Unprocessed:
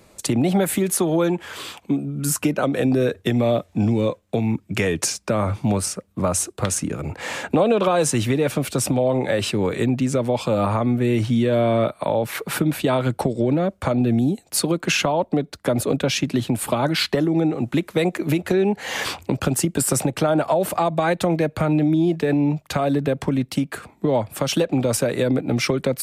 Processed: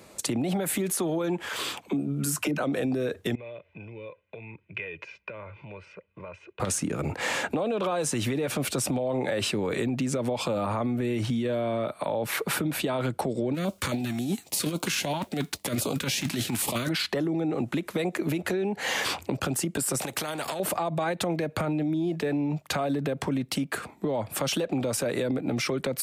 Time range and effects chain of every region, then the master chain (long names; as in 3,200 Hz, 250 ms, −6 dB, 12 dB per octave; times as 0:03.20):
0:01.49–0:02.60: high-pass filter 60 Hz + all-pass dispersion lows, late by 41 ms, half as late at 350 Hz
0:03.35–0:06.60: comb filter 2 ms, depth 73% + downward compressor 4 to 1, threshold −30 dBFS + transistor ladder low-pass 2,700 Hz, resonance 70%
0:13.54–0:16.88: spectral envelope flattened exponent 0.6 + compressor whose output falls as the input rises −23 dBFS, ratio −0.5 + notch on a step sequencer 7.4 Hz 470–1,800 Hz
0:20.01–0:20.60: high-shelf EQ 11,000 Hz +8 dB + downward compressor, threshold −23 dBFS + every bin compressed towards the loudest bin 2 to 1
whole clip: high-pass filter 140 Hz 6 dB per octave; brickwall limiter −18 dBFS; downward compressor, threshold −26 dBFS; level +2 dB